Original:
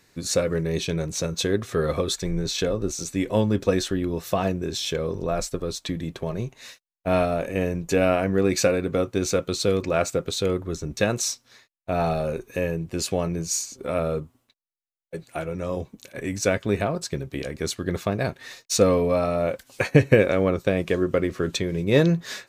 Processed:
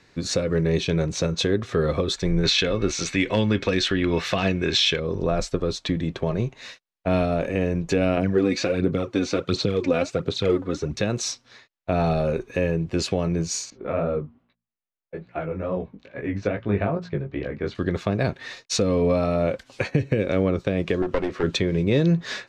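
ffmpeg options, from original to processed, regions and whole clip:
ffmpeg -i in.wav -filter_complex "[0:a]asettb=1/sr,asplit=3[link_01][link_02][link_03];[link_01]atrim=end=2.434[link_04];[link_02]atrim=start=2.43:end=5,asetpts=PTS-STARTPTS,afade=type=in:duration=0.004:curve=qsin,afade=type=out:start_time=2.566:duration=0.004:curve=qsin,equalizer=frequency=2200:width_type=o:width=2.4:gain=14.5,asoftclip=type=hard:threshold=-7.5dB,aeval=exprs='val(0)+0.00355*sin(2*PI*2200*n/s)':channel_layout=same[link_05];[link_03]atrim=start=4.996[link_06];[link_04][link_05]acrossfade=duration=0.004:curve1=hsin:curve2=qsin[link_07];[link_07][link_06]acrossfade=duration=0.004:curve1=qsin:curve2=hsin,asettb=1/sr,asplit=3[link_08][link_09][link_10];[link_08]atrim=end=8.174[link_11];[link_09]atrim=start=8.17:end=10.96,asetpts=PTS-STARTPTS,afade=type=in:duration=0.004:curve=qsin,afade=type=out:start_time=2.786:duration=0.004:curve=qsin,highpass=96,acrossover=split=5500[link_12][link_13];[link_13]acompressor=threshold=-41dB:ratio=4:attack=1:release=60[link_14];[link_12][link_14]amix=inputs=2:normalize=0,aphaser=in_gain=1:out_gain=1:delay=4.1:decay=0.61:speed=1.4:type=sinusoidal[link_15];[link_10]atrim=start=10.956[link_16];[link_11][link_15]acrossfade=duration=0.004:curve1=hsin:curve2=qsin[link_17];[link_17][link_16]acrossfade=duration=0.004:curve1=qsin:curve2=hsin,asettb=1/sr,asplit=3[link_18][link_19][link_20];[link_18]atrim=end=13.704[link_21];[link_19]atrim=start=13.7:end=17.75,asetpts=PTS-STARTPTS,afade=type=in:duration=0.004:curve=qsin,afade=type=out:start_time=4.046:duration=0.004:curve=qsin,lowpass=2200,bandreject=frequency=58.56:width_type=h:width=4,bandreject=frequency=117.12:width_type=h:width=4,bandreject=frequency=175.68:width_type=h:width=4,bandreject=frequency=234.24:width_type=h:width=4,flanger=delay=16:depth=4.8:speed=2.4[link_22];[link_20]atrim=start=17.746[link_23];[link_21][link_22]acrossfade=duration=0.004:curve1=hsin:curve2=qsin[link_24];[link_24][link_23]acrossfade=duration=0.004:curve1=qsin:curve2=hsin,asettb=1/sr,asplit=3[link_25][link_26][link_27];[link_25]atrim=end=21.024[link_28];[link_26]atrim=start=21.02:end=21.43,asetpts=PTS-STARTPTS,afade=type=in:duration=0.004:curve=qsin,afade=type=out:start_time=0.406:duration=0.004:curve=qsin,bass=frequency=250:gain=-8,treble=frequency=4000:gain=-2,aeval=exprs='clip(val(0),-1,0.0335)':channel_layout=same[link_29];[link_27]atrim=start=21.426[link_30];[link_28][link_29]acrossfade=duration=0.004:curve1=hsin:curve2=qsin[link_31];[link_31][link_30]acrossfade=duration=0.004:curve1=qsin:curve2=hsin,lowpass=4600,acrossover=split=430|3000[link_32][link_33][link_34];[link_33]acompressor=threshold=-28dB:ratio=6[link_35];[link_32][link_35][link_34]amix=inputs=3:normalize=0,alimiter=limit=-15dB:level=0:latency=1:release=270,volume=4.5dB" out.wav

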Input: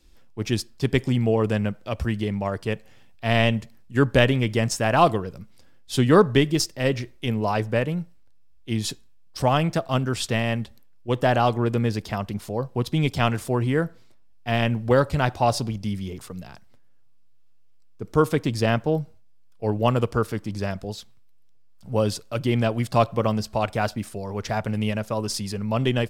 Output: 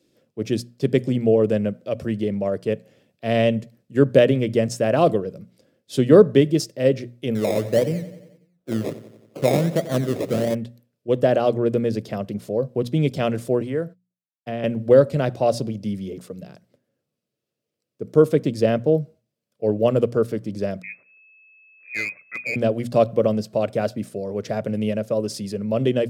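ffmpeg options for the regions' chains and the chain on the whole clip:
ffmpeg -i in.wav -filter_complex "[0:a]asettb=1/sr,asplit=3[link_01][link_02][link_03];[link_01]atrim=end=7.354[link_04];[link_02]atrim=start=7.35:end=10.55,asetpts=PTS-STARTPTS,afade=type=in:duration=0.004:curve=qsin,afade=type=out:start_time=3.196:duration=0.004:curve=qsin,acrusher=samples=23:mix=1:aa=0.000001:lfo=1:lforange=13.8:lforate=1.5,aecho=1:1:90|180|270|360|450|540:0.178|0.103|0.0598|0.0347|0.0201|0.0117,atrim=end_sample=141120[link_05];[link_03]atrim=start=10.546[link_06];[link_04][link_05]acrossfade=duration=0.004:curve1=hsin:curve2=qsin[link_07];[link_07][link_06]acrossfade=duration=0.004:curve1=qsin:curve2=hsin,asettb=1/sr,asplit=3[link_08][link_09][link_10];[link_08]atrim=end=13.614[link_11];[link_09]atrim=start=13.61:end=14.64,asetpts=PTS-STARTPTS,afade=type=in:duration=0.004:curve=qsin,afade=type=out:start_time=1.026:duration=0.004:curve=qsin,agate=range=-37dB:threshold=-44dB:ratio=16:release=100:detection=peak,acrossover=split=570|2400[link_12][link_13][link_14];[link_12]acompressor=threshold=-29dB:ratio=4[link_15];[link_13]acompressor=threshold=-31dB:ratio=4[link_16];[link_14]acompressor=threshold=-46dB:ratio=4[link_17];[link_15][link_16][link_17]amix=inputs=3:normalize=0[link_18];[link_10]atrim=start=14.636[link_19];[link_11][link_18]acrossfade=duration=0.004:curve1=hsin:curve2=qsin[link_20];[link_20][link_19]acrossfade=duration=0.004:curve1=qsin:curve2=hsin,asettb=1/sr,asplit=3[link_21][link_22][link_23];[link_21]atrim=end=20.824[link_24];[link_22]atrim=start=20.82:end=22.56,asetpts=PTS-STARTPTS,afade=type=in:duration=0.004:curve=qsin,afade=type=out:start_time=1.736:duration=0.004:curve=qsin,lowpass=frequency=2200:width_type=q:width=0.5098,lowpass=frequency=2200:width_type=q:width=0.6013,lowpass=frequency=2200:width_type=q:width=0.9,lowpass=frequency=2200:width_type=q:width=2.563,afreqshift=-2600,aeval=exprs='clip(val(0),-1,0.126)':channel_layout=same[link_25];[link_23]atrim=start=22.556[link_26];[link_24][link_25]acrossfade=duration=0.004:curve1=hsin:curve2=qsin[link_27];[link_27][link_26]acrossfade=duration=0.004:curve1=qsin:curve2=hsin,highpass=frequency=120:width=0.5412,highpass=frequency=120:width=1.3066,lowshelf=frequency=700:width_type=q:width=3:gain=6.5,bandreject=frequency=60:width_type=h:width=6,bandreject=frequency=120:width_type=h:width=6,bandreject=frequency=180:width_type=h:width=6,bandreject=frequency=240:width_type=h:width=6,volume=-4.5dB" out.wav

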